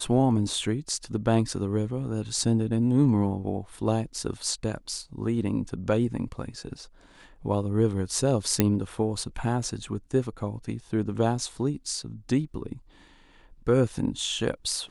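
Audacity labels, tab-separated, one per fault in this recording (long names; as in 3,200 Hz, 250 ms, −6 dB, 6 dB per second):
8.600000	8.600000	click −5 dBFS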